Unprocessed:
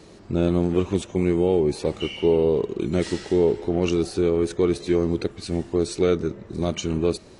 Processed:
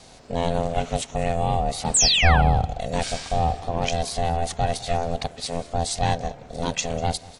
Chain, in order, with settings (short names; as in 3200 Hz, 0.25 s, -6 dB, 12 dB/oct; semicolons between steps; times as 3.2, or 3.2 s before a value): 1.94–2.42 painted sound fall 990–8600 Hz -24 dBFS; high shelf 2100 Hz +10.5 dB; ring modulator 340 Hz; 1.9–2.74 low shelf 340 Hz +7 dB; echo 0.195 s -21 dB